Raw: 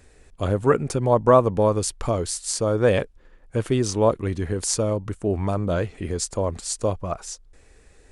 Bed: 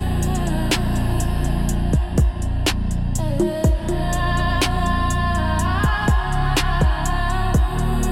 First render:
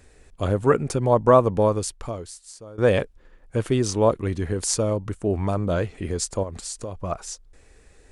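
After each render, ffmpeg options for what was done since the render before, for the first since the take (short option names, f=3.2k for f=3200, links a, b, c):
-filter_complex "[0:a]asettb=1/sr,asplit=3[a][b][c];[a]atrim=end=6.434[d];[b]atrim=start=6.43:end=6.97,asetpts=PTS-STARTPTS,afade=t=in:d=0.004:c=qsin,afade=t=out:st=0.536:d=0.004:c=qsin,acompressor=threshold=-29dB:ratio=5:attack=3.2:release=140:knee=1:detection=peak[e];[c]atrim=start=6.966[f];[d][e]acrossfade=d=0.004:c1=hsin:c2=qsin[g];[g][f]acrossfade=d=0.004:c1=qsin:c2=hsin,asplit=2[h][i];[h]atrim=end=2.78,asetpts=PTS-STARTPTS,afade=t=out:st=1.64:d=1.14:c=qua:silence=0.1[j];[i]atrim=start=2.78,asetpts=PTS-STARTPTS,afade=t=in:d=0.004:c=hsin:silence=0.1[k];[j][k]concat=n=2:v=0:a=1"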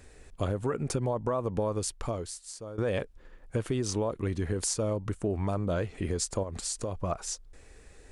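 -af "alimiter=limit=-13.5dB:level=0:latency=1:release=113,acompressor=threshold=-28dB:ratio=3"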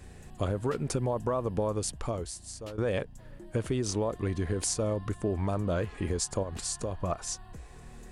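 -filter_complex "[1:a]volume=-30dB[a];[0:a][a]amix=inputs=2:normalize=0"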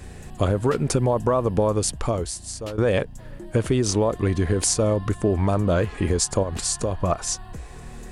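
-af "volume=9dB"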